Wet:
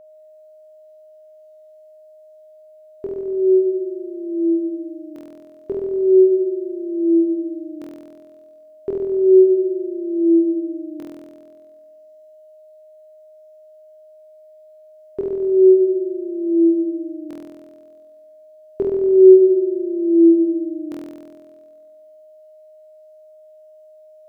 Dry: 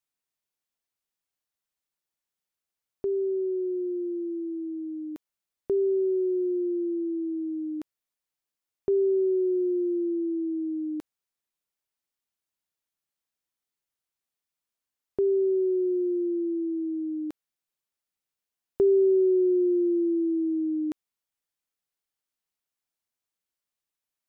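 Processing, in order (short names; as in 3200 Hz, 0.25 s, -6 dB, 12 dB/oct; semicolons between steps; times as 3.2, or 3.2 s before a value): flutter echo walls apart 4.1 m, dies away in 1.5 s; whine 620 Hz -46 dBFS; gain +2.5 dB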